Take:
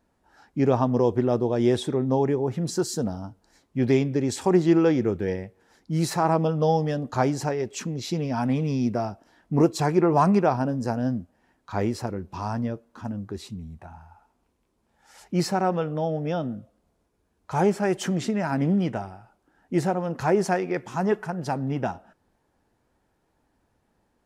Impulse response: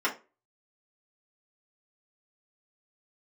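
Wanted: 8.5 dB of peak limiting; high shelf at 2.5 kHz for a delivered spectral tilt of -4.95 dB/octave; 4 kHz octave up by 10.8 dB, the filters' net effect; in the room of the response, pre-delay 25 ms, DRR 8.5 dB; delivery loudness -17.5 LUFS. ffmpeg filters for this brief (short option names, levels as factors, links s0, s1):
-filter_complex "[0:a]highshelf=f=2500:g=6,equalizer=f=4000:t=o:g=8,alimiter=limit=0.188:level=0:latency=1,asplit=2[s0][s1];[1:a]atrim=start_sample=2205,adelay=25[s2];[s1][s2]afir=irnorm=-1:irlink=0,volume=0.106[s3];[s0][s3]amix=inputs=2:normalize=0,volume=2.66"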